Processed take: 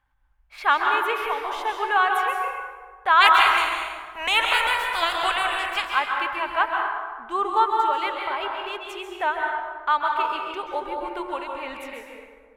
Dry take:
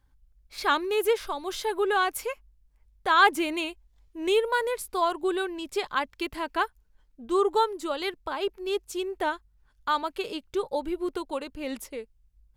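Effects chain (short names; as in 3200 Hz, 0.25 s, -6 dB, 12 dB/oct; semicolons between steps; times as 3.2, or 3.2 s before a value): 3.2–5.89 spectral limiter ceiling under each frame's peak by 28 dB; band shelf 1400 Hz +14 dB 2.6 oct; plate-style reverb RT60 1.6 s, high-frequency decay 0.55×, pre-delay 0.12 s, DRR 0.5 dB; gain -9 dB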